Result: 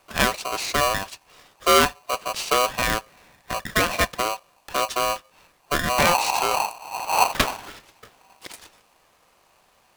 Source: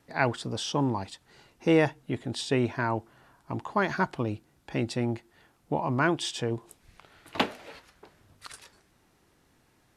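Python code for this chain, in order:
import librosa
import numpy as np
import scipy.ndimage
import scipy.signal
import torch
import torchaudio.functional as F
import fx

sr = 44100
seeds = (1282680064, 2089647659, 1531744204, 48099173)

y = fx.dmg_wind(x, sr, seeds[0], corner_hz=150.0, level_db=-32.0, at=(5.97, 7.7), fade=0.02)
y = y * np.sign(np.sin(2.0 * np.pi * 870.0 * np.arange(len(y)) / sr))
y = y * 10.0 ** (5.0 / 20.0)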